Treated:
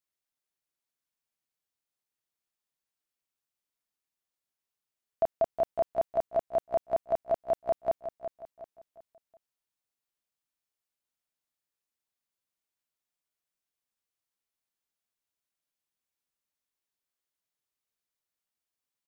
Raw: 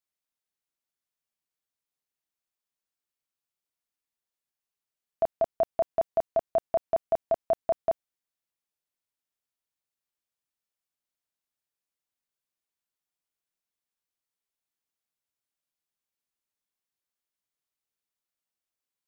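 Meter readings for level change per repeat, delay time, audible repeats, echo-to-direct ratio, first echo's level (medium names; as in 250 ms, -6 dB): -8.5 dB, 364 ms, 4, -9.0 dB, -9.5 dB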